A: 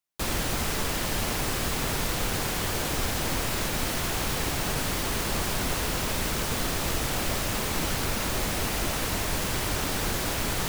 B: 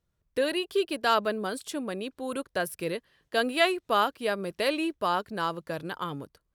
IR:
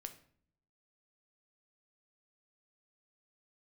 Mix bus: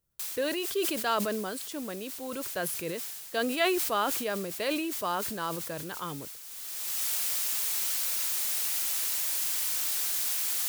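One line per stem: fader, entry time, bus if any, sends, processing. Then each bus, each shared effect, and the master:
+1.5 dB, 0.00 s, no send, first difference; automatic ducking −17 dB, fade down 0.20 s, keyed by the second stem
−4.5 dB, 0.00 s, no send, no processing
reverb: not used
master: level that may fall only so fast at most 33 dB per second

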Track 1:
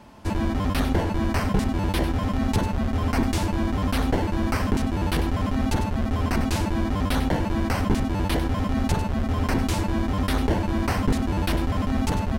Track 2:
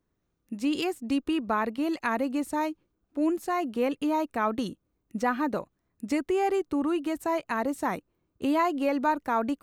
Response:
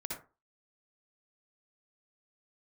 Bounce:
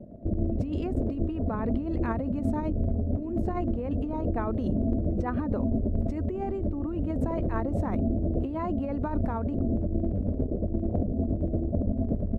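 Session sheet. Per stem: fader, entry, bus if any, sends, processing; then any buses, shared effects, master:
0.0 dB, 0.00 s, send −4 dB, echo send −12 dB, Butterworth low-pass 680 Hz 96 dB per octave; square-wave tremolo 8.8 Hz, depth 65%, duty 40%; automatic ducking −7 dB, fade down 0.30 s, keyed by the second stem
−1.0 dB, 0.00 s, no send, no echo send, low-pass filter 2,000 Hz 6 dB per octave; tilt shelving filter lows +5.5 dB, about 930 Hz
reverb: on, RT60 0.30 s, pre-delay 52 ms
echo: repeating echo 71 ms, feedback 41%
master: compressor whose output falls as the input rises −28 dBFS, ratio −1

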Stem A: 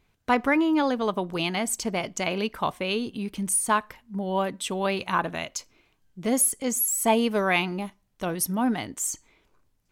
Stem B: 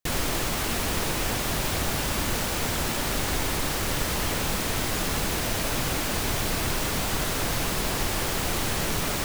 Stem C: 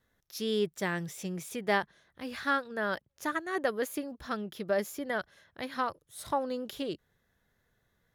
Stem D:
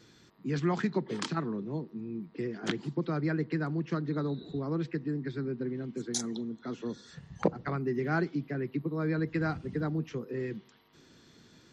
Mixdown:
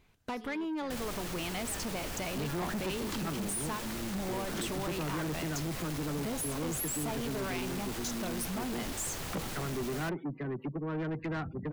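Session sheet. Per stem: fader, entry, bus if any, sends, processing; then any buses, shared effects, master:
+1.0 dB, 0.00 s, no send, downward compressor 6 to 1, threshold −31 dBFS, peak gain reduction 14.5 dB
−10.5 dB, 0.85 s, no send, no processing
−18.5 dB, 0.00 s, no send, no processing
+1.5 dB, 1.90 s, no send, gate on every frequency bin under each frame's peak −25 dB strong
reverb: not used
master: soft clipping −31.5 dBFS, distortion −8 dB

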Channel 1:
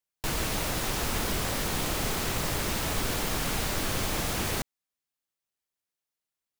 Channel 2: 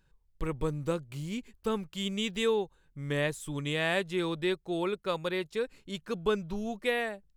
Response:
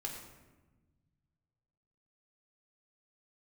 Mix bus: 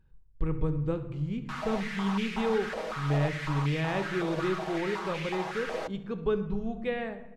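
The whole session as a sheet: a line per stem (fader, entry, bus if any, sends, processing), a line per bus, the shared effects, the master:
−6.0 dB, 1.25 s, send −16.5 dB, no echo send, comb filter 6.3 ms, depth 82%; brickwall limiter −18 dBFS, peak gain reduction 4.5 dB; high-pass on a step sequencer 5.4 Hz 540–2,300 Hz
−4.5 dB, 0.00 s, send −3.5 dB, echo send −13.5 dB, bass and treble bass +8 dB, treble −3 dB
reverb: on, RT60 1.2 s, pre-delay 10 ms
echo: single-tap delay 70 ms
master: head-to-tape spacing loss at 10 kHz 22 dB

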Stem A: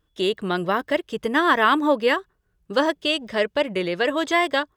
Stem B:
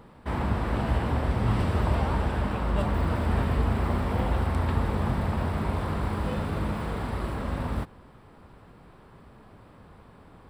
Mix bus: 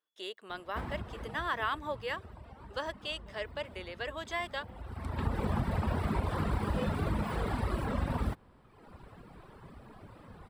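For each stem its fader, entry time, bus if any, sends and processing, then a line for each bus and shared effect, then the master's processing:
−14.5 dB, 0.00 s, no send, high-pass filter 540 Hz 12 dB per octave
+2.5 dB, 0.50 s, no send, reverb reduction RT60 1.3 s; downward compressor, threshold −29 dBFS, peak gain reduction 8.5 dB; automatic ducking −19 dB, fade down 1.90 s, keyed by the first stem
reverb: not used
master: no processing

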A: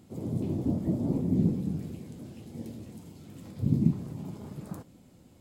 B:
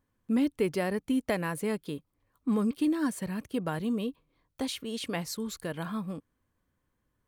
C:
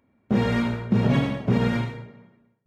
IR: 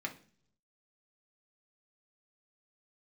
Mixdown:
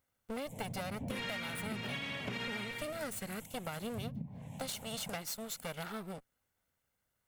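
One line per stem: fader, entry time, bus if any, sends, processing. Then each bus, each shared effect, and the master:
0.0 dB, 0.35 s, bus A, no send, treble cut that deepens with the level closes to 1,100 Hz, closed at −22 dBFS; phaser with its sweep stopped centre 1,300 Hz, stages 6
−2.5 dB, 0.00 s, no bus, no send, lower of the sound and its delayed copy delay 1.4 ms
−4.5 dB, 0.80 s, bus A, no send, parametric band 2,600 Hz +13 dB 1.9 octaves
bus A: 0.0 dB, high-shelf EQ 7,300 Hz +10 dB; downward compressor, threshold −27 dBFS, peak gain reduction 8.5 dB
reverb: not used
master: spectral tilt +2 dB per octave; downward compressor 10 to 1, threshold −36 dBFS, peak gain reduction 11.5 dB

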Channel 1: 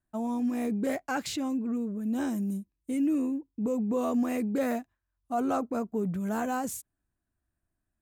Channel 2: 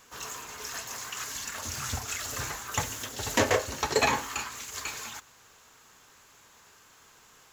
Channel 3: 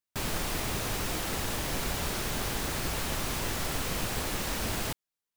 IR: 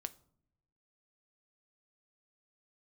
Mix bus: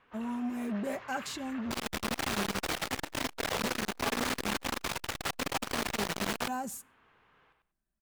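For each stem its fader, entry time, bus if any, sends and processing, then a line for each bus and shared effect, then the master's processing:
−7.5 dB, 0.00 s, send −7 dB, no echo send, comb filter 5.1 ms, depth 54%
−12.0 dB, 0.00 s, send −6.5 dB, echo send −3.5 dB, low-pass filter 2,800 Hz 24 dB per octave; speech leveller within 3 dB 2 s
−0.5 dB, 1.55 s, send −12.5 dB, no echo send, mid-hump overdrive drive 14 dB, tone 3,800 Hz, clips at −17 dBFS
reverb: on, pre-delay 6 ms
echo: repeating echo 95 ms, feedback 19%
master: saturating transformer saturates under 880 Hz

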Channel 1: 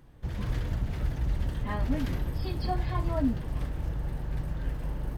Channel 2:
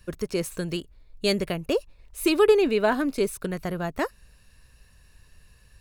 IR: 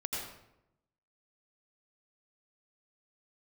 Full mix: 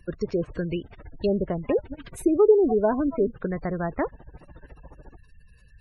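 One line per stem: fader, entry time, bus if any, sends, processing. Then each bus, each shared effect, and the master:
+0.5 dB, 0.00 s, no send, amplitude tremolo 14 Hz, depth 86%; reverb reduction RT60 1.2 s; bass and treble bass −11 dB, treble −1 dB
+1.5 dB, 0.00 s, no send, treble cut that deepens with the level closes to 860 Hz, closed at −21.5 dBFS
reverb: not used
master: gate on every frequency bin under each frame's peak −25 dB strong

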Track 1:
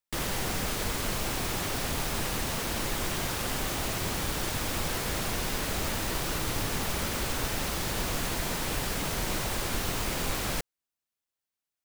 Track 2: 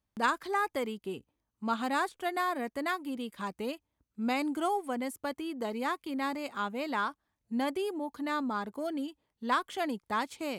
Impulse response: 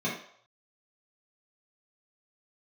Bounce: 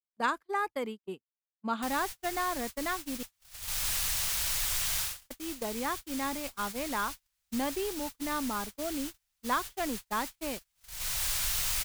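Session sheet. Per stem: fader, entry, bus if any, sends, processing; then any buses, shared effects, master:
+1.0 dB, 1.70 s, no send, guitar amp tone stack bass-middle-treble 10-0-10; automatic ducking −10 dB, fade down 0.30 s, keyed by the second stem
−1.0 dB, 0.00 s, muted 0:03.23–0:05.30, no send, high-shelf EQ 4,100 Hz −8 dB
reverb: not used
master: noise gate −37 dBFS, range −40 dB; high-shelf EQ 4,200 Hz +5.5 dB

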